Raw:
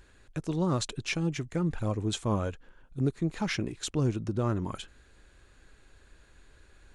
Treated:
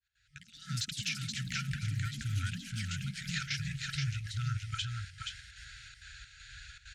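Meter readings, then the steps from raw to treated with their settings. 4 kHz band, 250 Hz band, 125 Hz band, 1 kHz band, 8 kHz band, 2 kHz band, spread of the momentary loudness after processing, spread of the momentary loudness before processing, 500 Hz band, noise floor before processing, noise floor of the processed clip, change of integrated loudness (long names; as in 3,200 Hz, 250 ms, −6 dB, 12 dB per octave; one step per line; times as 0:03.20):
+2.0 dB, −13.5 dB, −3.5 dB, −9.5 dB, −1.0 dB, +1.0 dB, 15 LU, 9 LU, below −40 dB, −60 dBFS, −65 dBFS, −5.0 dB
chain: fade in at the beginning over 2.26 s
high-pass filter 54 Hz 12 dB per octave
brick-wall band-stop 150–1,300 Hz
low-pass filter 6,200 Hz 24 dB per octave
high-shelf EQ 2,200 Hz +11.5 dB
in parallel at +2 dB: brickwall limiter −30 dBFS, peak gain reduction 15.5 dB
on the sum: downward compressor, threshold −33 dBFS, peak gain reduction 12 dB
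gate pattern "x.xxx..xxxx" 197 BPM −12 dB
on a send: single-tap delay 475 ms −4 dB
on the sum: delay with pitch and tempo change per echo 129 ms, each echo +4 semitones, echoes 3, each echo −6 dB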